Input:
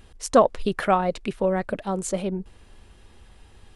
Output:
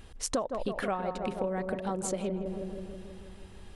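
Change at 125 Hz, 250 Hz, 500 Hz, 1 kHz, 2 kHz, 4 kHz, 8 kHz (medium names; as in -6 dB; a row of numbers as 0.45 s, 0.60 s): -6.5 dB, -7.0 dB, -9.5 dB, -11.0 dB, -8.0 dB, -5.0 dB, -3.0 dB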